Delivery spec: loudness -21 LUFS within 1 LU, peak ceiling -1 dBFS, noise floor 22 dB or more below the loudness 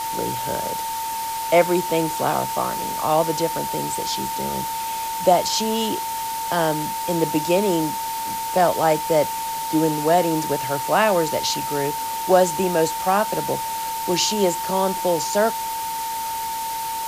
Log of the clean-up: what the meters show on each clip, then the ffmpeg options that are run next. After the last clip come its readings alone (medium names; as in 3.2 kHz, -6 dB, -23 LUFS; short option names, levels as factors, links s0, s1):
steady tone 900 Hz; tone level -25 dBFS; noise floor -27 dBFS; noise floor target -44 dBFS; loudness -21.5 LUFS; peak level -3.5 dBFS; loudness target -21.0 LUFS
-> -af "bandreject=f=900:w=30"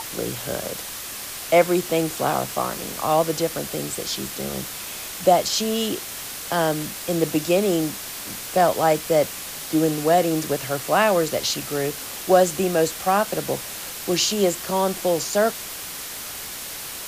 steady tone not found; noise floor -34 dBFS; noise floor target -45 dBFS
-> -af "afftdn=nr=11:nf=-34"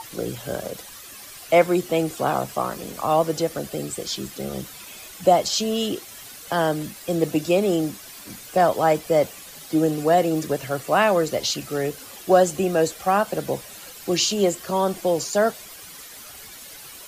noise floor -42 dBFS; noise floor target -45 dBFS
-> -af "afftdn=nr=6:nf=-42"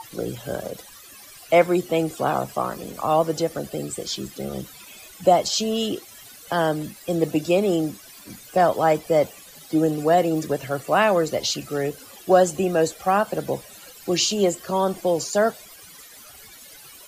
noise floor -45 dBFS; loudness -22.5 LUFS; peak level -4.5 dBFS; loudness target -21.0 LUFS
-> -af "volume=1.19"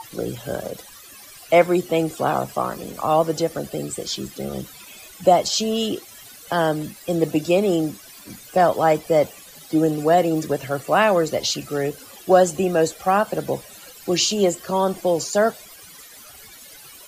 loudness -21.0 LUFS; peak level -3.0 dBFS; noise floor -44 dBFS